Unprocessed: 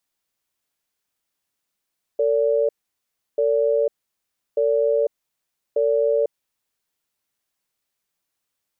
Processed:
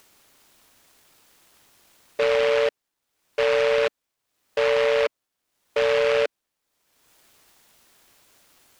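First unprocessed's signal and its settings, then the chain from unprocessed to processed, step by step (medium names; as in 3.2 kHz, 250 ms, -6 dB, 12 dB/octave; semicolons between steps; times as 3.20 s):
cadence 450 Hz, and 575 Hz, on 0.50 s, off 0.69 s, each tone -19 dBFS 4.66 s
upward compressor, threshold -37 dBFS; Chebyshev high-pass 260 Hz, order 3; delay time shaken by noise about 1.7 kHz, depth 0.12 ms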